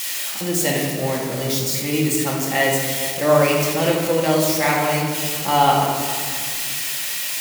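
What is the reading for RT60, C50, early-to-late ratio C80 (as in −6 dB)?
1.9 s, 1.0 dB, 3.0 dB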